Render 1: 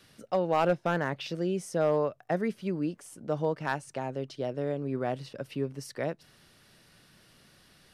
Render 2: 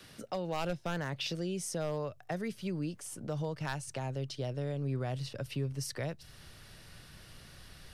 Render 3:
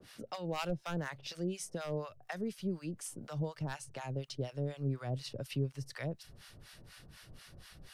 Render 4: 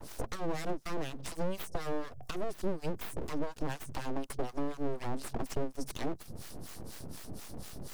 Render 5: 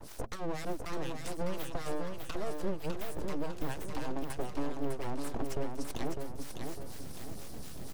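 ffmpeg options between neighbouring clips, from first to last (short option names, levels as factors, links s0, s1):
-filter_complex "[0:a]asplit=2[s0][s1];[s1]alimiter=level_in=1.12:limit=0.0631:level=0:latency=1,volume=0.891,volume=0.75[s2];[s0][s2]amix=inputs=2:normalize=0,asubboost=boost=4.5:cutoff=100,acrossover=split=140|3000[s3][s4][s5];[s4]acompressor=threshold=0.00631:ratio=2[s6];[s3][s6][s5]amix=inputs=3:normalize=0"
-filter_complex "[0:a]acrossover=split=750[s0][s1];[s0]aeval=exprs='val(0)*(1-1/2+1/2*cos(2*PI*4.1*n/s))':c=same[s2];[s1]aeval=exprs='val(0)*(1-1/2-1/2*cos(2*PI*4.1*n/s))':c=same[s3];[s2][s3]amix=inputs=2:normalize=0,volume=1.26"
-filter_complex "[0:a]acrossover=split=200|970|4900[s0][s1][s2][s3];[s2]aeval=exprs='sgn(val(0))*max(abs(val(0))-0.0015,0)':c=same[s4];[s0][s1][s4][s3]amix=inputs=4:normalize=0,acrossover=split=120|310[s5][s6][s7];[s5]acompressor=threshold=0.00141:ratio=4[s8];[s6]acompressor=threshold=0.00355:ratio=4[s9];[s7]acompressor=threshold=0.002:ratio=4[s10];[s8][s9][s10]amix=inputs=3:normalize=0,aeval=exprs='abs(val(0))':c=same,volume=5.96"
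-af "aecho=1:1:603|1206|1809|2412|3015|3618:0.562|0.253|0.114|0.0512|0.0231|0.0104,volume=0.841"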